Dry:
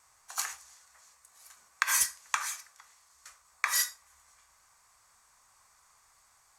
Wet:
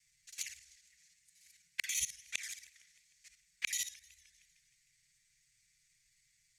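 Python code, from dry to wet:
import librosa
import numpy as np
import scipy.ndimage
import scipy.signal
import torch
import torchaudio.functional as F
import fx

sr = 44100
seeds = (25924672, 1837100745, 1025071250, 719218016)

y = fx.local_reverse(x, sr, ms=54.0)
y = scipy.signal.sosfilt(scipy.signal.cheby1(4, 1.0, [180.0, 2000.0], 'bandstop', fs=sr, output='sos'), y)
y = fx.env_flanger(y, sr, rest_ms=7.4, full_db=-31.0)
y = fx.high_shelf(y, sr, hz=7000.0, db=-10.5)
y = fx.echo_warbled(y, sr, ms=154, feedback_pct=63, rate_hz=2.8, cents=218, wet_db=-23.0)
y = y * librosa.db_to_amplitude(1.0)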